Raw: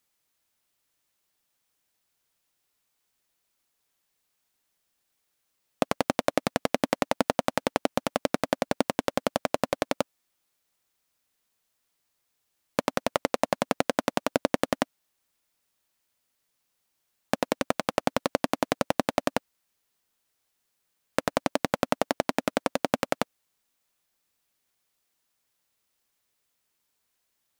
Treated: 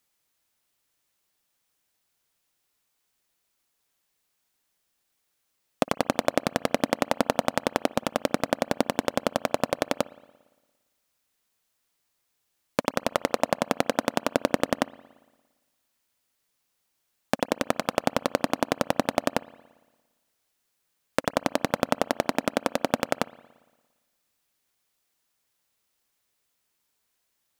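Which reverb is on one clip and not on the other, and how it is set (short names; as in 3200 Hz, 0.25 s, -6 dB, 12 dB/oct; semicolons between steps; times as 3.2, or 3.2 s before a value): spring tank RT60 1.3 s, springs 57 ms, chirp 70 ms, DRR 19.5 dB; gain +1 dB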